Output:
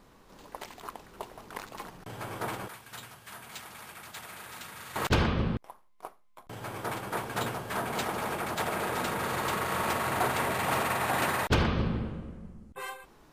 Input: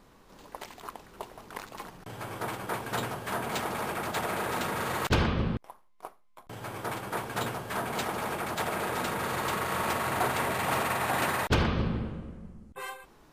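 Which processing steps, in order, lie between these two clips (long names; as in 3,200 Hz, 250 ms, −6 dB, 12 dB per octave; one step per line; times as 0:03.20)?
0:02.68–0:04.96: guitar amp tone stack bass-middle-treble 5-5-5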